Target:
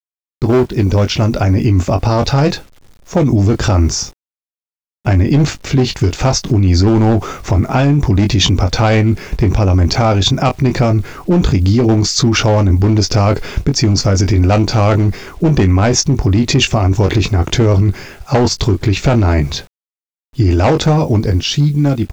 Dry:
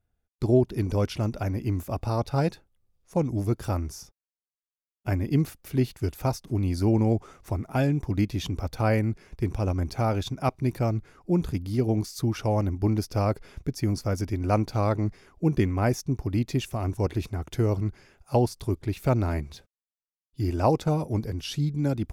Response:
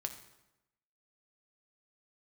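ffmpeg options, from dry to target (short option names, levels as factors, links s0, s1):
-filter_complex "[0:a]highshelf=f=3800:g=-4,aresample=16000,volume=8.91,asoftclip=hard,volume=0.112,aresample=44100,dynaudnorm=f=250:g=11:m=3.76,asplit=2[s0][s1];[s1]adelay=21,volume=0.335[s2];[s0][s2]amix=inputs=2:normalize=0,acrusher=bits=9:mix=0:aa=0.000001,alimiter=level_in=6.31:limit=0.891:release=50:level=0:latency=1,adynamicequalizer=threshold=0.0631:dfrequency=2200:dqfactor=0.7:tfrequency=2200:tqfactor=0.7:attack=5:release=100:ratio=0.375:range=2:mode=boostabove:tftype=highshelf,volume=0.631"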